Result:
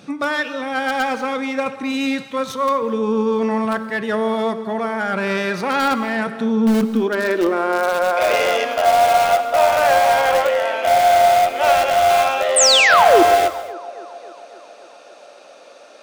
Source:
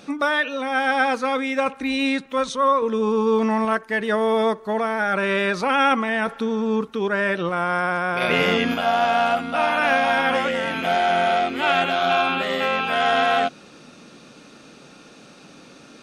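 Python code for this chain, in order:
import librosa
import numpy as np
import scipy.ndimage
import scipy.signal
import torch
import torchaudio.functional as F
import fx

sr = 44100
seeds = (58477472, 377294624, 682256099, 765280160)

p1 = fx.tracing_dist(x, sr, depth_ms=0.067)
p2 = fx.filter_sweep_highpass(p1, sr, from_hz=120.0, to_hz=600.0, start_s=6.05, end_s=8.15, q=4.8)
p3 = (np.mod(10.0 ** (9.5 / 20.0) * p2 + 1.0, 2.0) - 1.0) / 10.0 ** (9.5 / 20.0)
p4 = p2 + (p3 * 10.0 ** (-11.0 / 20.0))
p5 = fx.spec_paint(p4, sr, seeds[0], shape='fall', start_s=12.56, length_s=0.67, low_hz=310.0, high_hz=9100.0, level_db=-10.0)
p6 = p5 + fx.echo_wet_bandpass(p5, sr, ms=274, feedback_pct=65, hz=600.0, wet_db=-18.0, dry=0)
p7 = fx.rev_gated(p6, sr, seeds[1], gate_ms=270, shape='flat', drr_db=11.0)
y = p7 * 10.0 ** (-3.0 / 20.0)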